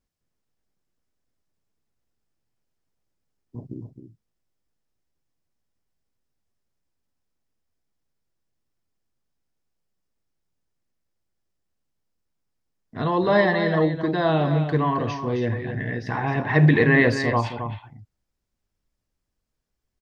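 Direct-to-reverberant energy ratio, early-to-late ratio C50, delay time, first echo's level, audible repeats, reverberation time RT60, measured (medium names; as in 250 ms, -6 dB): no reverb, no reverb, 264 ms, -9.0 dB, 1, no reverb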